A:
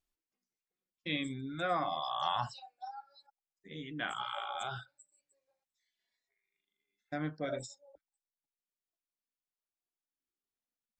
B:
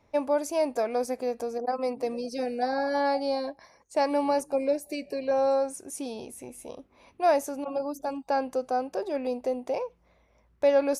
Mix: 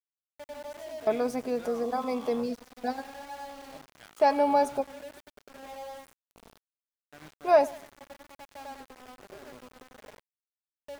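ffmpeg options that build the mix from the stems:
-filter_complex "[0:a]aeval=exprs='val(0)+0.002*(sin(2*PI*60*n/s)+sin(2*PI*2*60*n/s)/2+sin(2*PI*3*60*n/s)/3+sin(2*PI*4*60*n/s)/4+sin(2*PI*5*60*n/s)/5)':c=same,volume=0.251,asplit=2[s0][s1];[1:a]aecho=1:1:4.8:0.57,adelay=250,volume=1.12,asplit=2[s2][s3];[s3]volume=0.106[s4];[s1]apad=whole_len=496300[s5];[s2][s5]sidechaingate=range=0.0794:threshold=0.00178:ratio=16:detection=peak[s6];[s4]aecho=0:1:98|196|294|392|490|588:1|0.46|0.212|0.0973|0.0448|0.0206[s7];[s0][s6][s7]amix=inputs=3:normalize=0,highshelf=f=3900:g=-7,aeval=exprs='val(0)*gte(abs(val(0)),0.00631)':c=same"

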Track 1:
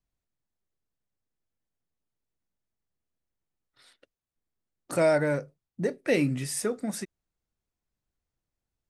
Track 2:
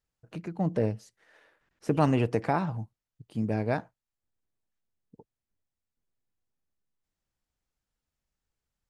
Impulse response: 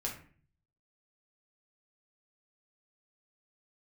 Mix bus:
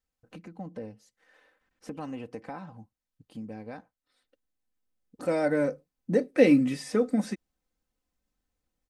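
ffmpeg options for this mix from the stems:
-filter_complex "[0:a]equalizer=f=330:w=0.42:g=5.5,adelay=300,volume=0.841[s0];[1:a]acompressor=threshold=0.00794:ratio=2,volume=0.708,asplit=2[s1][s2];[s2]apad=whole_len=405315[s3];[s0][s3]sidechaincompress=threshold=0.00224:ratio=10:attack=10:release=1260[s4];[s4][s1]amix=inputs=2:normalize=0,aecho=1:1:3.9:0.57,acrossover=split=5600[s5][s6];[s6]acompressor=threshold=0.00251:ratio=4:attack=1:release=60[s7];[s5][s7]amix=inputs=2:normalize=0"

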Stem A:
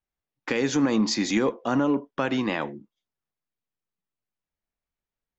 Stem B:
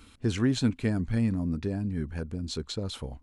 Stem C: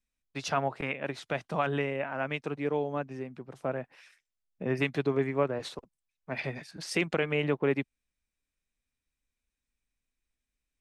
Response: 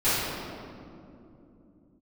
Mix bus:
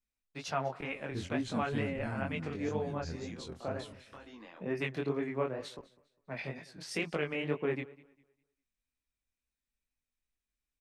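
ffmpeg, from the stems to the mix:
-filter_complex "[0:a]equalizer=f=130:t=o:w=1.9:g=-9,acompressor=threshold=0.0224:ratio=5,adelay=1950,volume=0.237[s0];[1:a]adelay=900,volume=0.398,asplit=2[s1][s2];[s2]volume=0.224[s3];[2:a]volume=0.75,asplit=3[s4][s5][s6];[s5]volume=0.0841[s7];[s6]apad=whole_len=181908[s8];[s1][s8]sidechaingate=range=0.0224:threshold=0.00355:ratio=16:detection=peak[s9];[s3][s7]amix=inputs=2:normalize=0,aecho=0:1:201|402|603|804:1|0.28|0.0784|0.022[s10];[s0][s9][s4][s10]amix=inputs=4:normalize=0,flanger=delay=18:depth=6:speed=2.1"

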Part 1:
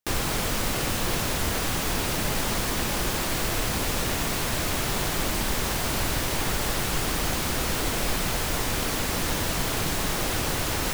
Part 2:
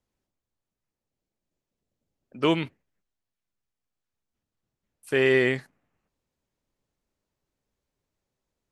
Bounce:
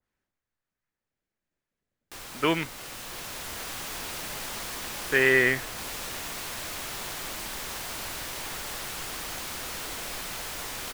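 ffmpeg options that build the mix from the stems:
-filter_complex "[0:a]lowshelf=f=450:g=-11.5,dynaudnorm=f=140:g=17:m=2,adelay=2050,volume=0.237[s0];[1:a]equalizer=f=1700:t=o:w=1.2:g=11,volume=0.631[s1];[s0][s1]amix=inputs=2:normalize=0,adynamicequalizer=threshold=0.0158:dfrequency=1800:dqfactor=0.7:tfrequency=1800:tqfactor=0.7:attack=5:release=100:ratio=0.375:range=1.5:mode=cutabove:tftype=highshelf"

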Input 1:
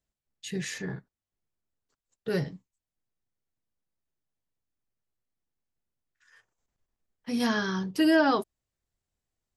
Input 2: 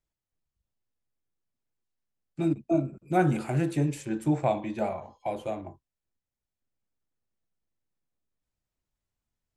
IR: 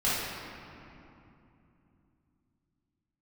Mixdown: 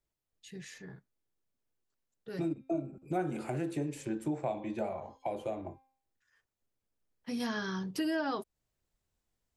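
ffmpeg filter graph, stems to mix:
-filter_complex "[0:a]volume=0.944,afade=t=in:st=6.93:d=0.61:silence=0.237137[s0];[1:a]equalizer=f=440:t=o:w=1.4:g=4.5,bandreject=f=264.7:t=h:w=4,bandreject=f=529.4:t=h:w=4,bandreject=f=794.1:t=h:w=4,bandreject=f=1058.8:t=h:w=4,bandreject=f=1323.5:t=h:w=4,bandreject=f=1588.2:t=h:w=4,bandreject=f=1852.9:t=h:w=4,bandreject=f=2117.6:t=h:w=4,bandreject=f=2382.3:t=h:w=4,bandreject=f=2647:t=h:w=4,bandreject=f=2911.7:t=h:w=4,bandreject=f=3176.4:t=h:w=4,bandreject=f=3441.1:t=h:w=4,bandreject=f=3705.8:t=h:w=4,bandreject=f=3970.5:t=h:w=4,bandreject=f=4235.2:t=h:w=4,bandreject=f=4499.9:t=h:w=4,bandreject=f=4764.6:t=h:w=4,bandreject=f=5029.3:t=h:w=4,bandreject=f=5294:t=h:w=4,acrossover=split=190[s1][s2];[s1]acompressor=threshold=0.0224:ratio=6[s3];[s3][s2]amix=inputs=2:normalize=0,volume=0.891[s4];[s0][s4]amix=inputs=2:normalize=0,acompressor=threshold=0.0178:ratio=2.5"

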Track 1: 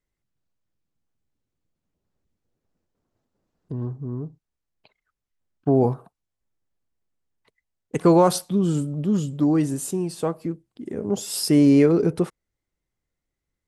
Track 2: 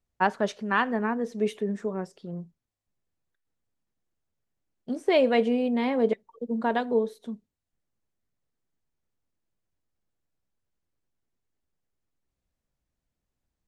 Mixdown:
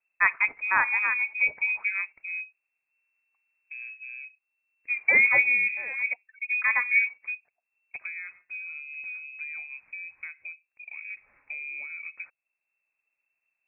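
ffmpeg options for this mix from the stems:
-filter_complex "[0:a]acompressor=threshold=0.0501:ratio=8,volume=0.335,asplit=2[s0][s1];[1:a]volume=1.19[s2];[s1]apad=whole_len=602932[s3];[s2][s3]sidechaincompress=threshold=0.00562:ratio=6:attack=41:release=866[s4];[s0][s4]amix=inputs=2:normalize=0,lowpass=f=2300:t=q:w=0.5098,lowpass=f=2300:t=q:w=0.6013,lowpass=f=2300:t=q:w=0.9,lowpass=f=2300:t=q:w=2.563,afreqshift=-2700"

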